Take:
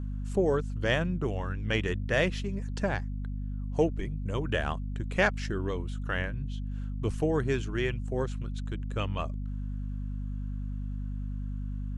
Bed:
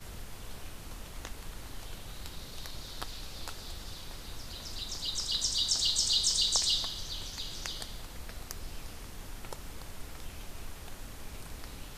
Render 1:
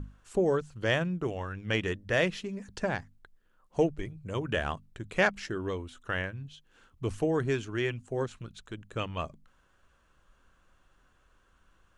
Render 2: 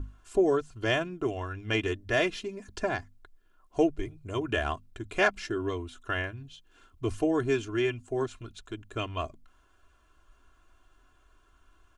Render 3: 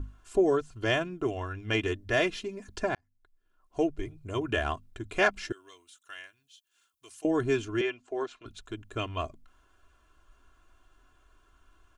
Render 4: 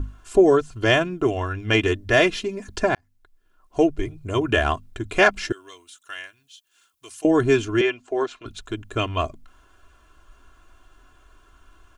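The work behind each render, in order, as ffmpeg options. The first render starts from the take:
-af "bandreject=f=50:t=h:w=6,bandreject=f=100:t=h:w=6,bandreject=f=150:t=h:w=6,bandreject=f=200:t=h:w=6,bandreject=f=250:t=h:w=6"
-af "bandreject=f=1900:w=9.1,aecho=1:1:2.9:0.71"
-filter_complex "[0:a]asettb=1/sr,asplit=3[s0][s1][s2];[s0]atrim=end=5.524[s3];[s1]atrim=start=5.52:end=7.25,asetpts=PTS-STARTPTS,afade=t=in:d=0.004:c=qsin,afade=t=out:st=1.726:d=0.004:c=qsin,aderivative[s4];[s2]atrim=start=7.246[s5];[s3][s4]acrossfade=d=0.004:c1=hsin:c2=qsin[s6];[s6][s5]acrossfade=d=0.004:c1=qsin:c2=hsin,asettb=1/sr,asplit=3[s7][s8][s9];[s7]atrim=end=7.814[s10];[s8]atrim=start=7.81:end=8.46,asetpts=PTS-STARTPTS,afade=t=in:d=0.004:c=qsin,afade=t=out:st=0.646:d=0.004:c=qsin,acrossover=split=310 6300:gain=0.0631 1 0.0891[s11][s12][s13];[s11][s12][s13]amix=inputs=3:normalize=0[s14];[s9]atrim=start=8.456[s15];[s10][s14]acrossfade=d=0.004:c1=hsin:c2=qsin[s16];[s16][s15]acrossfade=d=0.004:c1=qsin:c2=hsin,asplit=2[s17][s18];[s17]atrim=end=2.95,asetpts=PTS-STARTPTS,afade=t=out:st=2.946:d=0.004:c=hsin[s19];[s18]atrim=start=2.95,asetpts=PTS-STARTPTS,afade=t=in:d=1.25[s20];[s19][s20]concat=n=2:v=0:a=1"
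-af "volume=2.82,alimiter=limit=0.708:level=0:latency=1"

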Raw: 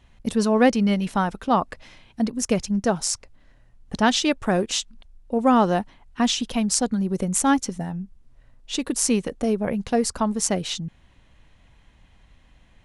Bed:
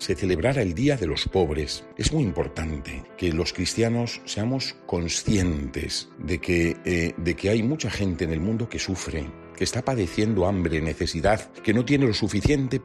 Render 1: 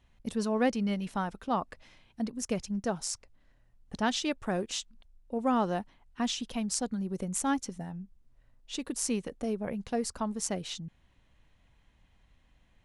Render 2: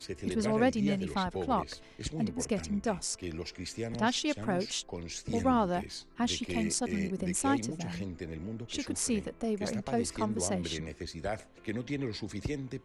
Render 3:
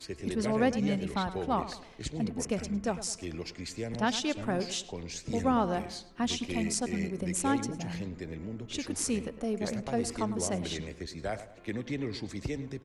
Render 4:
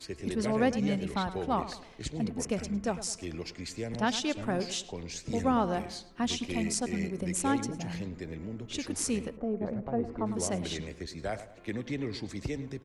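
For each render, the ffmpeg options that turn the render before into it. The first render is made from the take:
-af "volume=0.316"
-filter_complex "[1:a]volume=0.188[s0];[0:a][s0]amix=inputs=2:normalize=0"
-filter_complex "[0:a]asplit=2[s0][s1];[s1]adelay=105,lowpass=f=2500:p=1,volume=0.224,asplit=2[s2][s3];[s3]adelay=105,lowpass=f=2500:p=1,volume=0.44,asplit=2[s4][s5];[s5]adelay=105,lowpass=f=2500:p=1,volume=0.44,asplit=2[s6][s7];[s7]adelay=105,lowpass=f=2500:p=1,volume=0.44[s8];[s0][s2][s4][s6][s8]amix=inputs=5:normalize=0"
-filter_complex "[0:a]asplit=3[s0][s1][s2];[s0]afade=t=out:st=9.36:d=0.02[s3];[s1]lowpass=1100,afade=t=in:st=9.36:d=0.02,afade=t=out:st=10.25:d=0.02[s4];[s2]afade=t=in:st=10.25:d=0.02[s5];[s3][s4][s5]amix=inputs=3:normalize=0"

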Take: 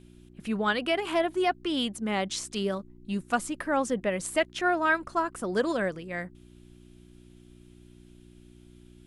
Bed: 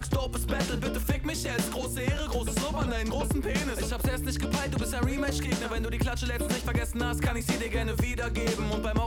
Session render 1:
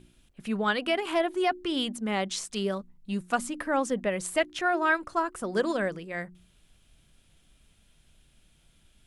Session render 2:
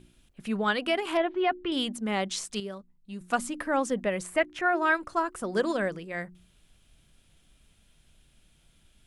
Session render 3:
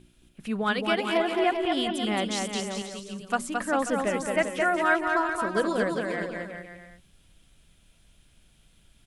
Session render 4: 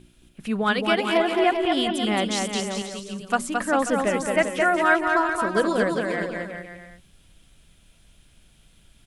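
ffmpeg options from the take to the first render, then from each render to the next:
-af "bandreject=f=60:t=h:w=4,bandreject=f=120:t=h:w=4,bandreject=f=180:t=h:w=4,bandreject=f=240:t=h:w=4,bandreject=f=300:t=h:w=4,bandreject=f=360:t=h:w=4"
-filter_complex "[0:a]asettb=1/sr,asplit=3[s0][s1][s2];[s0]atrim=end=1.174[s3];[s1]atrim=start=1.17:end=1.72,asetpts=PTS-STARTPTS,afade=t=in:d=0.004:c=qsin,afade=t=out:st=0.546:d=0.004:c=qsin,lowpass=f=3400:w=0.5412,lowpass=f=3400:w=1.3066[s4];[s2]atrim=start=1.716[s5];[s3][s4]acrossfade=d=0.004:c1=hsin:c2=qsin[s6];[s6][s5]acrossfade=d=0.004:c1=qsin:c2=hsin,asettb=1/sr,asplit=3[s7][s8][s9];[s7]atrim=end=4.234[s10];[s8]atrim=start=4.23:end=4.76,asetpts=PTS-STARTPTS,afade=t=in:d=0.004:c=qsin,afade=t=out:st=0.526:d=0.004:c=qsin,highshelf=f=2800:t=q:w=1.5:g=-6.5[s11];[s9]atrim=start=4.756[s12];[s10][s11]acrossfade=d=0.004:c1=hsin:c2=qsin[s13];[s13][s12]acrossfade=d=0.004:c1=qsin:c2=hsin,asplit=3[s14][s15][s16];[s14]atrim=end=2.602[s17];[s15]atrim=start=2.598:end=3.212,asetpts=PTS-STARTPTS,volume=0.376[s18];[s16]atrim=start=3.208[s19];[s17][s18]acrossfade=d=0.004:c1=hsin:c2=hsin[s20];[s20][s19]acrossfade=d=0.004:c1=hsin:c2=hsin"
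-af "aecho=1:1:220|396|536.8|649.4|739.6:0.631|0.398|0.251|0.158|0.1"
-af "volume=1.58"

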